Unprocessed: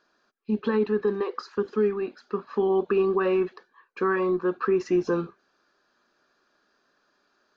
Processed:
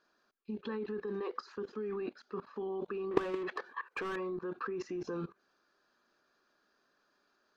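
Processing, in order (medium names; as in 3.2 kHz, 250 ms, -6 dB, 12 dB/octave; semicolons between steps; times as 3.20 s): 3.11–4.16 s: overdrive pedal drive 27 dB, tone 1.5 kHz, clips at -14 dBFS; level held to a coarse grid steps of 19 dB; trim +1 dB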